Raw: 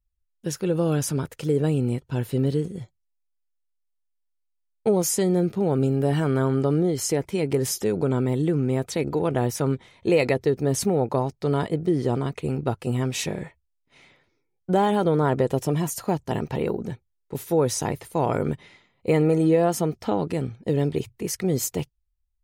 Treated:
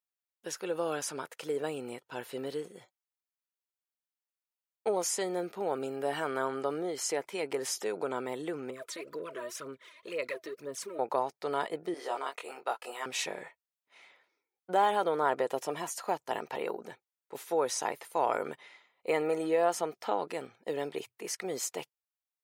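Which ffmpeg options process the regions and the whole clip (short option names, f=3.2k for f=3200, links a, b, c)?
-filter_complex "[0:a]asettb=1/sr,asplit=3[a][b][c];[a]atrim=end=8.704[d];[b]atrim=start=8.7:end=10.99,asetpts=PTS-STARTPTS,afade=t=in:d=0.004:c=qsin,afade=t=out:st=2.286:d=0.004:c=qsin,asuperstop=centerf=800:order=20:qfactor=2.7,aphaser=in_gain=1:out_gain=1:delay=3.3:decay=0.68:speed=2:type=sinusoidal,acompressor=threshold=-35dB:ratio=2:attack=3.2:release=140:knee=1:detection=peak[e];[c]atrim=start=10.986[f];[d][e]acrossfade=d=0.004:c1=hsin:c2=qsin[g];[g][f]acrossfade=d=0.004:c1=qsin:c2=hsin,asettb=1/sr,asplit=3[h][i][j];[h]atrim=end=11.944[k];[i]atrim=start=11.94:end=13.06,asetpts=PTS-STARTPTS,afade=t=in:d=0.004:c=qsin,afade=t=out:st=1.116:d=0.004:c=qsin,highpass=590,agate=range=-33dB:threshold=-47dB:ratio=3:release=100:detection=peak,asplit=2[l][m];[m]adelay=22,volume=-2.5dB[n];[l][n]amix=inputs=2:normalize=0,atrim=end_sample=49392[o];[j]atrim=start=13.056[p];[k][o]acrossfade=d=0.004:c1=hsin:c2=qsin[q];[q][p]acrossfade=d=0.004:c1=qsin:c2=hsin,equalizer=f=5.9k:w=0.4:g=-5,acrossover=split=9700[r][s];[s]acompressor=threshold=-55dB:ratio=4:attack=1:release=60[t];[r][t]amix=inputs=2:normalize=0,highpass=700"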